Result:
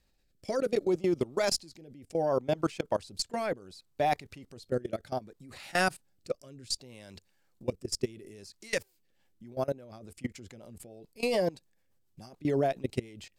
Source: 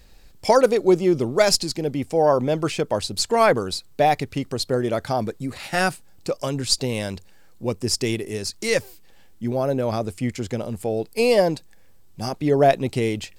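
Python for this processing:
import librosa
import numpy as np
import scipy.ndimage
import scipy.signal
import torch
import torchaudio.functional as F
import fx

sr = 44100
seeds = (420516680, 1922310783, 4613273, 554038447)

y = fx.low_shelf(x, sr, hz=73.0, db=-6.0)
y = fx.notch(y, sr, hz=460.0, q=12.0)
y = fx.level_steps(y, sr, step_db=22)
y = fx.rotary_switch(y, sr, hz=0.65, then_hz=7.0, switch_at_s=8.77)
y = y * 10.0 ** (-2.5 / 20.0)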